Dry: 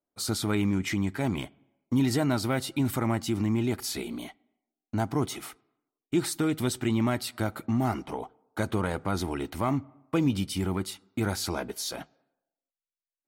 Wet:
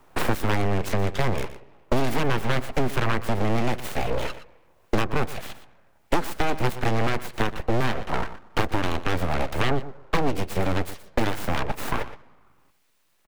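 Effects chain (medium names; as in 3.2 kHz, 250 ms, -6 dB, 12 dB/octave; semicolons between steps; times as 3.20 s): self-modulated delay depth 0.75 ms; graphic EQ 125/250/500/1000/2000 Hz +11/+7/+11/+6/+10 dB; full-wave rectifier; delay 119 ms -17 dB; three bands compressed up and down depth 100%; trim -4.5 dB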